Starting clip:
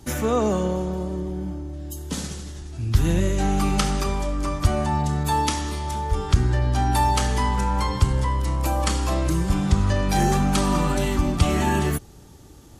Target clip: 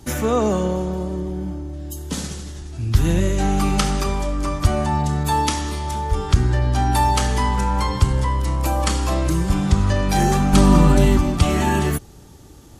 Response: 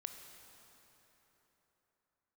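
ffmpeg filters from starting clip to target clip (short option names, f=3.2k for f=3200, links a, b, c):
-filter_complex "[0:a]asettb=1/sr,asplit=3[a][b][c];[a]atrim=end=10.534[d];[b]atrim=start=10.53:end=11.18,asetpts=PTS-STARTPTS,afade=t=in:d=0.004:c=qsin,afade=t=out:st=0.646:d=0.004:c=qsin,lowshelf=f=440:g=8.5[e];[c]atrim=start=11.176[f];[d][e]acrossfade=d=0.004:c1=hsin:c2=qsin[g];[g][f]acrossfade=d=0.004:c1=qsin:c2=hsin,volume=2.5dB"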